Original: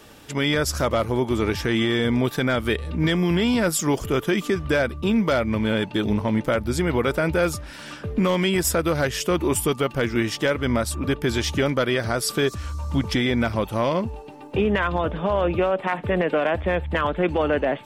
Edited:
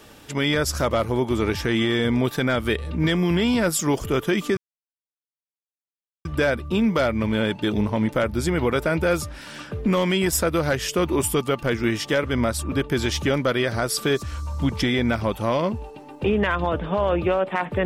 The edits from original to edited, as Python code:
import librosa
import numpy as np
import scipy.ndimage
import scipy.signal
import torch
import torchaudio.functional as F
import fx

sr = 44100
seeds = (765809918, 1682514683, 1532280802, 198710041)

y = fx.edit(x, sr, fx.insert_silence(at_s=4.57, length_s=1.68), tone=tone)